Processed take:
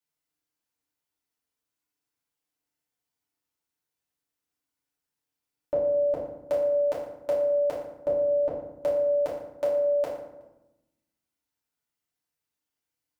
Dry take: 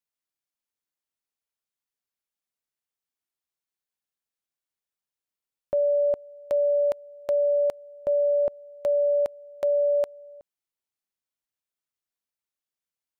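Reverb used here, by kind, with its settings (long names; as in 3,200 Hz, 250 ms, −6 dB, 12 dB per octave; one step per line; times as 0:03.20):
feedback delay network reverb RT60 0.91 s, low-frequency decay 1.6×, high-frequency decay 0.6×, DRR −7 dB
level −3 dB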